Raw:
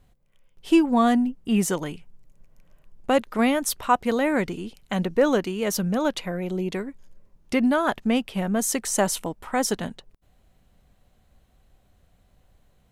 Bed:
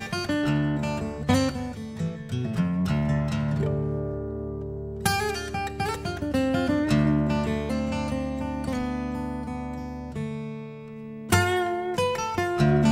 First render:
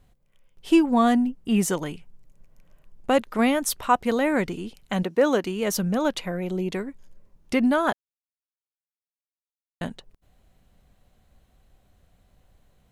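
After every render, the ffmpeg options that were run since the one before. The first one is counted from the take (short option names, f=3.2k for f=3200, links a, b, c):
-filter_complex "[0:a]asettb=1/sr,asplit=3[a][b][c];[a]atrim=end=5.034[d];[b]atrim=start=5.03:end=5.44,asetpts=PTS-STARTPTS,afade=t=in:d=0.004:c=qsin,afade=t=out:st=0.406:d=0.004:c=qsin,highpass=210[e];[c]atrim=start=5.436[f];[d][e]acrossfade=d=0.004:c1=hsin:c2=qsin[g];[g][f]acrossfade=d=0.004:c1=qsin:c2=hsin,asplit=3[h][i][j];[h]atrim=end=7.93,asetpts=PTS-STARTPTS,afade=t=out:st=7.926:d=0.004:c=hsin[k];[i]atrim=start=7.93:end=9.81,asetpts=PTS-STARTPTS,volume=0[l];[j]atrim=start=9.81,asetpts=PTS-STARTPTS,afade=t=in:d=0.004:c=hsin[m];[k][l][m]concat=n=3:v=0:a=1"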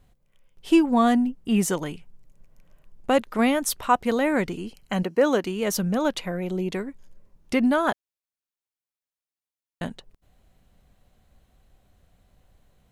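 -filter_complex "[0:a]asettb=1/sr,asplit=3[a][b][c];[a]atrim=end=4.574[d];[b]atrim=start=4.57:end=5.22,asetpts=PTS-STARTPTS,afade=t=in:d=0.004:c=qsin,afade=t=out:st=0.646:d=0.004:c=qsin,asuperstop=centerf=3600:order=8:qfactor=7.2[e];[c]atrim=start=5.216[f];[d][e]acrossfade=d=0.004:c1=hsin:c2=qsin[g];[g][f]acrossfade=d=0.004:c1=qsin:c2=hsin"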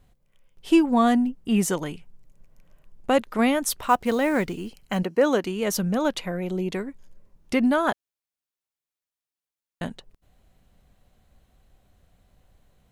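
-filter_complex "[0:a]asplit=3[a][b][c];[a]afade=t=out:st=3.79:d=0.02[d];[b]acrusher=bits=7:mode=log:mix=0:aa=0.000001,afade=t=in:st=3.79:d=0.02,afade=t=out:st=4.97:d=0.02[e];[c]afade=t=in:st=4.97:d=0.02[f];[d][e][f]amix=inputs=3:normalize=0"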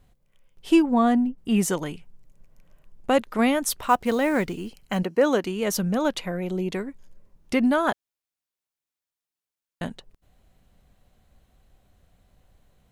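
-filter_complex "[0:a]asettb=1/sr,asplit=3[a][b][c];[a]atrim=end=0.824[d];[b]atrim=start=0.82:end=1.38,asetpts=PTS-STARTPTS,afade=t=in:d=0.004:c=qsin,afade=t=out:st=0.556:d=0.004:c=qsin,highshelf=f=2.2k:g=-8.5[e];[c]atrim=start=1.376[f];[d][e]acrossfade=d=0.004:c1=hsin:c2=qsin[g];[g][f]acrossfade=d=0.004:c1=qsin:c2=hsin"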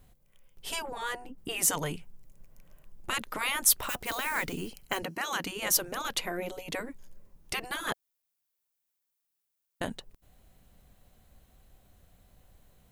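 -af "afftfilt=real='re*lt(hypot(re,im),0.224)':imag='im*lt(hypot(re,im),0.224)':win_size=1024:overlap=0.75,highshelf=f=9.9k:g=12"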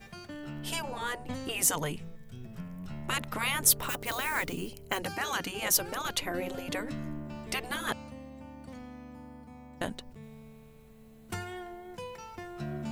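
-filter_complex "[1:a]volume=-17dB[a];[0:a][a]amix=inputs=2:normalize=0"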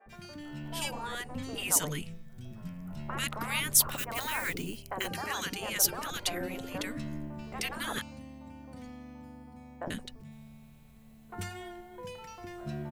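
-filter_complex "[0:a]acrossover=split=450|1400[a][b][c];[a]adelay=60[d];[c]adelay=90[e];[d][b][e]amix=inputs=3:normalize=0"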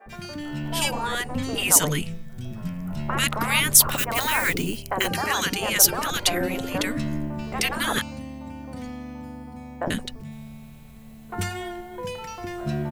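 -af "volume=10.5dB,alimiter=limit=-2dB:level=0:latency=1"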